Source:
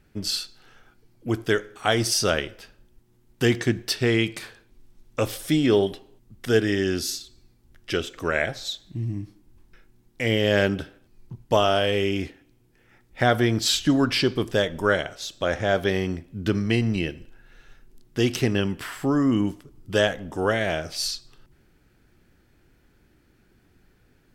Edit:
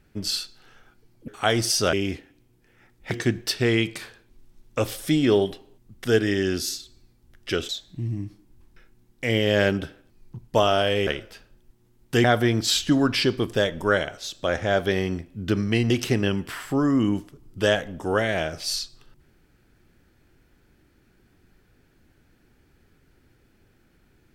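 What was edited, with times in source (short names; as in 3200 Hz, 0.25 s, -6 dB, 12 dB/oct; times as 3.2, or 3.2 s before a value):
1.28–1.7 cut
2.35–3.52 swap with 12.04–13.22
8.1–8.66 cut
16.88–18.22 cut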